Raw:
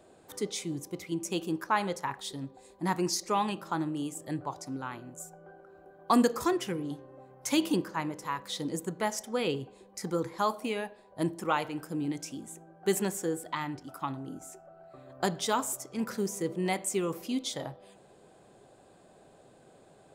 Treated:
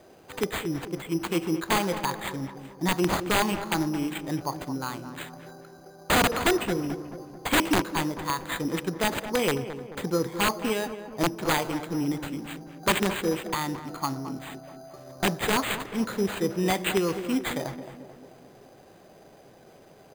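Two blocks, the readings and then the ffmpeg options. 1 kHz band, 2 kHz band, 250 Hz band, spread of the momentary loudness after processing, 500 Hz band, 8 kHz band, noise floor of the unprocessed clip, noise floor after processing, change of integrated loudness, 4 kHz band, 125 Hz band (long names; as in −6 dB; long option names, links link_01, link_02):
+3.5 dB, +9.5 dB, +4.0 dB, 15 LU, +4.5 dB, +2.5 dB, −59 dBFS, −53 dBFS, +5.0 dB, +7.0 dB, +6.0 dB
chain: -filter_complex "[0:a]acrusher=samples=8:mix=1:aa=0.000001,aeval=exprs='(mod(10.6*val(0)+1,2)-1)/10.6':channel_layout=same,asplit=2[link_01][link_02];[link_02]adelay=218,lowpass=frequency=1600:poles=1,volume=-10.5dB,asplit=2[link_03][link_04];[link_04]adelay=218,lowpass=frequency=1600:poles=1,volume=0.55,asplit=2[link_05][link_06];[link_06]adelay=218,lowpass=frequency=1600:poles=1,volume=0.55,asplit=2[link_07][link_08];[link_08]adelay=218,lowpass=frequency=1600:poles=1,volume=0.55,asplit=2[link_09][link_10];[link_10]adelay=218,lowpass=frequency=1600:poles=1,volume=0.55,asplit=2[link_11][link_12];[link_12]adelay=218,lowpass=frequency=1600:poles=1,volume=0.55[link_13];[link_01][link_03][link_05][link_07][link_09][link_11][link_13]amix=inputs=7:normalize=0,volume=5dB"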